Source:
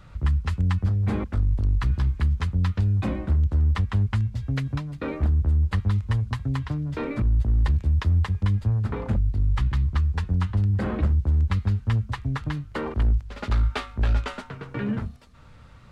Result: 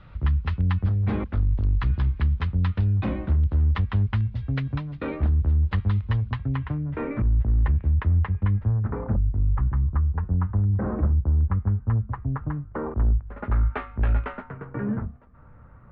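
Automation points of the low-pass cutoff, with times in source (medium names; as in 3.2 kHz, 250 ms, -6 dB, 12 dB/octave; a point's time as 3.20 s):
low-pass 24 dB/octave
6.19 s 3.8 kHz
6.90 s 2.3 kHz
8.44 s 2.3 kHz
9.17 s 1.4 kHz
13.02 s 1.4 kHz
14.05 s 2.4 kHz
14.82 s 1.6 kHz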